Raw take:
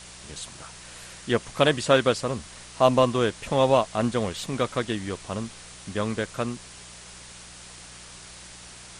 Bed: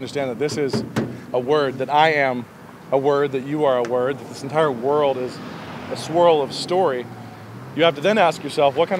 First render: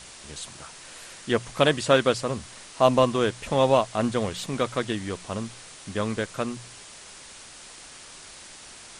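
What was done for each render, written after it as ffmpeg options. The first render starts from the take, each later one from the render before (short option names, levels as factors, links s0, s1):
-af "bandreject=f=60:t=h:w=4,bandreject=f=120:t=h:w=4,bandreject=f=180:t=h:w=4"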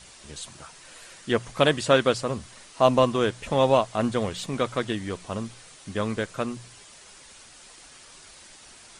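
-af "afftdn=nr=6:nf=-46"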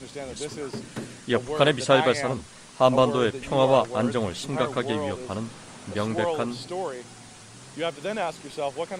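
-filter_complex "[1:a]volume=0.237[s0];[0:a][s0]amix=inputs=2:normalize=0"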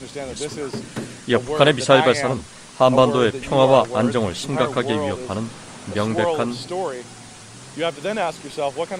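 -af "volume=1.88,alimiter=limit=0.891:level=0:latency=1"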